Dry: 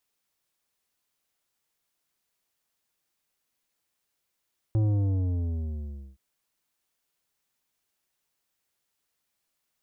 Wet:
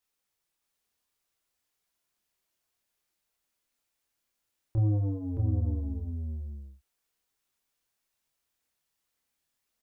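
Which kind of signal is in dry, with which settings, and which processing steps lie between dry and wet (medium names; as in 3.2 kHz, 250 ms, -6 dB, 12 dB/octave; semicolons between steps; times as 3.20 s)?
sub drop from 110 Hz, over 1.42 s, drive 10 dB, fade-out 1.42 s, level -21.5 dB
chorus voices 6, 0.82 Hz, delay 27 ms, depth 2.3 ms; on a send: delay 620 ms -4.5 dB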